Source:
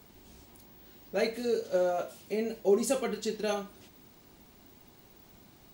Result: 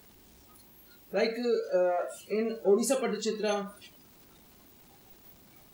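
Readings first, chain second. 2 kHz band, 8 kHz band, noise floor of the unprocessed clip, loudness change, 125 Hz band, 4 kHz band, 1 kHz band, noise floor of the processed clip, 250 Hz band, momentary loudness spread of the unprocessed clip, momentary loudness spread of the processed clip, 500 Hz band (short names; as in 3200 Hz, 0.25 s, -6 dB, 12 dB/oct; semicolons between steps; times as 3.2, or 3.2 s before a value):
+1.5 dB, +2.0 dB, -58 dBFS, +1.5 dB, n/a, +1.5 dB, +1.5 dB, -57 dBFS, +1.5 dB, 8 LU, 8 LU, +1.5 dB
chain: zero-crossing step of -35.5 dBFS; spectral noise reduction 17 dB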